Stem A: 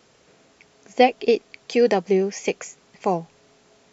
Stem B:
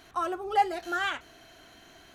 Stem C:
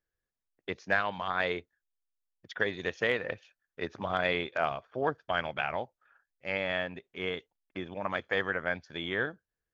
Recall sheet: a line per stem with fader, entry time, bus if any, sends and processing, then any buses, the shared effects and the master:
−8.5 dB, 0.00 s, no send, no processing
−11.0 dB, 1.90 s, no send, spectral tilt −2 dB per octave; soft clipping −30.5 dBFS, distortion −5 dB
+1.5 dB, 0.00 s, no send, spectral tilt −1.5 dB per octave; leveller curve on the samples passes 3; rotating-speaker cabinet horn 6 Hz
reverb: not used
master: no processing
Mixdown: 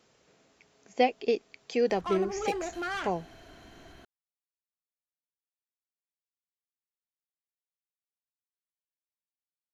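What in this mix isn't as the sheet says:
stem B −11.0 dB → +0.5 dB
stem C: muted

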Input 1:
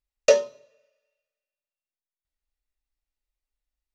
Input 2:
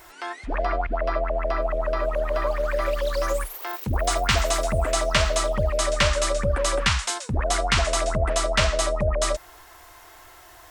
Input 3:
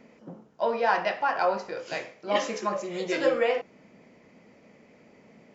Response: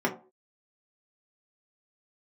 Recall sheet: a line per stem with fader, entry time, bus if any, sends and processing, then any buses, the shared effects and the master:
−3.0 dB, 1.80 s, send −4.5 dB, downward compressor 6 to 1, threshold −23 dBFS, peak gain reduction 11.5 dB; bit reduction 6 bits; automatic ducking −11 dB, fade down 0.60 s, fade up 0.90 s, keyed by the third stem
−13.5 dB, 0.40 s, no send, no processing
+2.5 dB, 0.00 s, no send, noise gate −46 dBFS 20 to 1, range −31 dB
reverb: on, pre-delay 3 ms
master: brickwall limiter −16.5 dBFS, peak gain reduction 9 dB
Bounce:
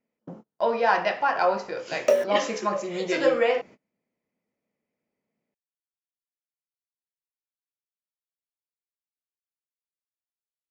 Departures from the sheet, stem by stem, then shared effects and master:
stem 2: muted
master: missing brickwall limiter −16.5 dBFS, peak gain reduction 9 dB

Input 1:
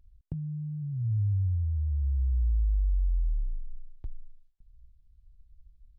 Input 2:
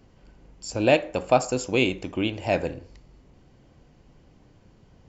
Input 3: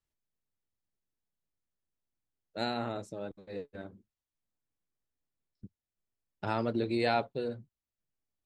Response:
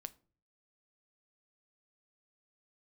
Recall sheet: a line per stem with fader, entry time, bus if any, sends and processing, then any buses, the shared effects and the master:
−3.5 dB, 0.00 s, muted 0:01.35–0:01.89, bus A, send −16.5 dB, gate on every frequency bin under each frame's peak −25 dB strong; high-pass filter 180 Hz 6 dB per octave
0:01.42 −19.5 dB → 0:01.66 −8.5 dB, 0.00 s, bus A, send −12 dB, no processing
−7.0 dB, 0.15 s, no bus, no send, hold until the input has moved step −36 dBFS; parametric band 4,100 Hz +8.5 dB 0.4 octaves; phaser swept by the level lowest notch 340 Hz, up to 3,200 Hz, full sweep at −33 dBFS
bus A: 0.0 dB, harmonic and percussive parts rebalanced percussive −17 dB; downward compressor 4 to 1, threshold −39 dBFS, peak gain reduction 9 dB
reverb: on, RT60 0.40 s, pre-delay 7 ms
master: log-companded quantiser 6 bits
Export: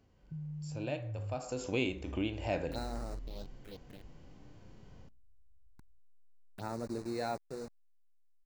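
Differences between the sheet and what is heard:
stem 2 −19.5 dB → −9.5 dB
master: missing log-companded quantiser 6 bits

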